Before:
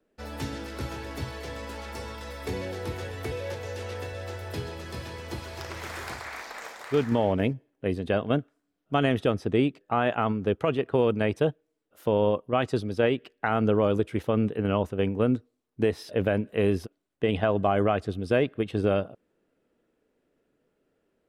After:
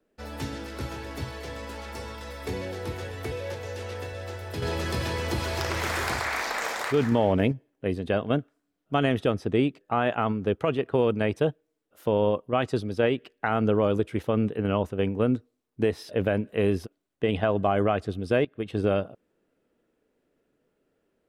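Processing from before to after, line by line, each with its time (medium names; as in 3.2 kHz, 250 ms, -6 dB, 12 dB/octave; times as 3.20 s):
4.62–7.52 s: level flattener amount 50%
18.45–18.85 s: fade in equal-power, from -19 dB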